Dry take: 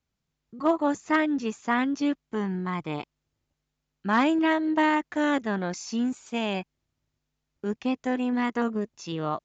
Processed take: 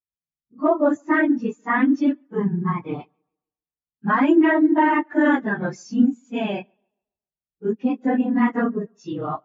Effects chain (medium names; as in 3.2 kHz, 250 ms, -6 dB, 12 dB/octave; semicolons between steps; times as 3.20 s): phase randomisation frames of 50 ms; dynamic bell 1.7 kHz, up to +5 dB, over -38 dBFS, Q 1.2; peak limiter -14.5 dBFS, peak gain reduction 6.5 dB; on a send: tape echo 140 ms, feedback 53%, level -24 dB, low-pass 4.7 kHz; on the sum: spectral contrast expander 1.5:1; trim +7.5 dB